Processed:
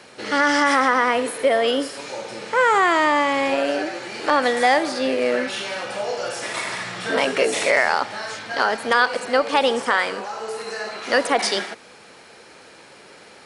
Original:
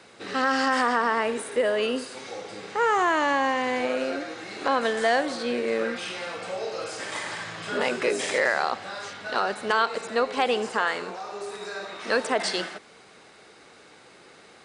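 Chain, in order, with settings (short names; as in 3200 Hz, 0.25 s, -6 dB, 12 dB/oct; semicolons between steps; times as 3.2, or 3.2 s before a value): speed mistake 44.1 kHz file played as 48 kHz; gain +5.5 dB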